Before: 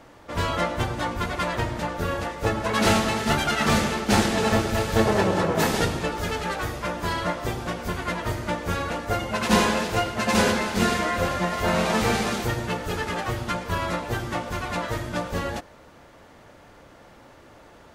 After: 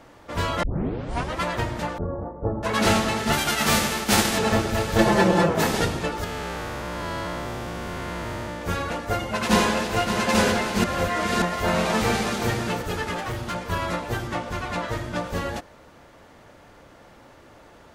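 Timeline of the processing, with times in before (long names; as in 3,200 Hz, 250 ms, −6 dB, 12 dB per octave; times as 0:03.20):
0:00.63: tape start 0.80 s
0:01.98–0:02.63: Bessel low-pass filter 660 Hz, order 6
0:03.32–0:04.37: spectral envelope flattened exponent 0.6
0:04.98–0:05.49: comb filter 5.8 ms, depth 99%
0:06.24–0:08.62: spectrum smeared in time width 350 ms
0:09.19–0:10.26: delay throw 570 ms, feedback 40%, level −7.5 dB
0:10.84–0:11.42: reverse
0:12.07–0:12.48: delay throw 340 ms, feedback 10%, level −6.5 dB
0:13.16–0:13.56: hard clipping −25.5 dBFS
0:14.27–0:15.24: high-shelf EQ 9,800 Hz −7.5 dB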